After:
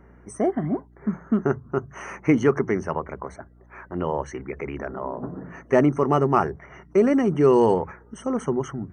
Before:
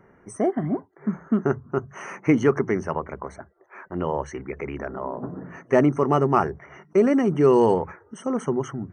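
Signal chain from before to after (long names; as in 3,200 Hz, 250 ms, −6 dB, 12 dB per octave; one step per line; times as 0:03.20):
mains hum 60 Hz, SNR 29 dB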